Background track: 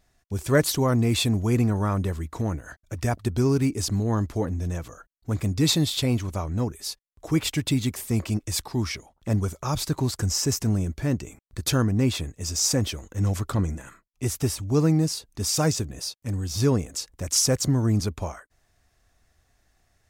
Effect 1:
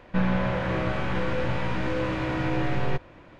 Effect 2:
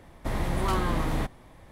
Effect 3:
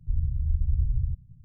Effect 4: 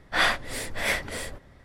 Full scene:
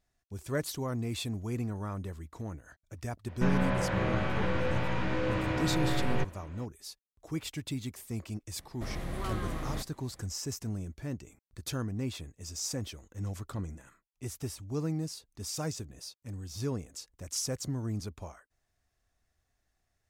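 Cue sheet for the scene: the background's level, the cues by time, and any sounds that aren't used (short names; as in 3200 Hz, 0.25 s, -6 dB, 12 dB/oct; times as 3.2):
background track -12.5 dB
3.27 add 1 -3.5 dB
8.56 add 2 -8.5 dB + notch 900 Hz, Q 5.3
not used: 3, 4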